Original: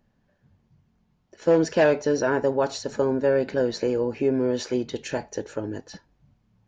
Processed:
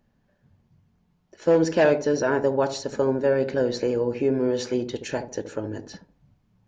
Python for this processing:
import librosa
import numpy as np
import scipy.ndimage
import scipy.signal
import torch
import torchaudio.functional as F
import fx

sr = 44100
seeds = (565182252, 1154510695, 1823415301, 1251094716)

y = fx.echo_wet_lowpass(x, sr, ms=74, feedback_pct=32, hz=680.0, wet_db=-8.5)